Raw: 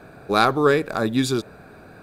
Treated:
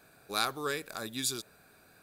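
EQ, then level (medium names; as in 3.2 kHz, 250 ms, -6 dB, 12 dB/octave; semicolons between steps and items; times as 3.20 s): pre-emphasis filter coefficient 0.9; 0.0 dB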